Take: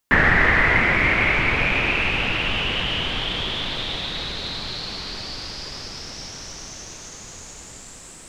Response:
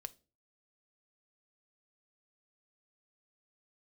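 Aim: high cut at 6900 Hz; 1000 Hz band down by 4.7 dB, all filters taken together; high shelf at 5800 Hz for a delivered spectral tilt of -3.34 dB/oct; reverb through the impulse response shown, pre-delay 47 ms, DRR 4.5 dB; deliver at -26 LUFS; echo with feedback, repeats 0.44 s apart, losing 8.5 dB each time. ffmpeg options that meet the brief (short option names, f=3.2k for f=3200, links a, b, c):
-filter_complex "[0:a]lowpass=6.9k,equalizer=f=1k:t=o:g=-6.5,highshelf=f=5.8k:g=4.5,aecho=1:1:440|880|1320|1760:0.376|0.143|0.0543|0.0206,asplit=2[a][b];[1:a]atrim=start_sample=2205,adelay=47[c];[b][c]afir=irnorm=-1:irlink=0,volume=0dB[d];[a][d]amix=inputs=2:normalize=0,volume=-6.5dB"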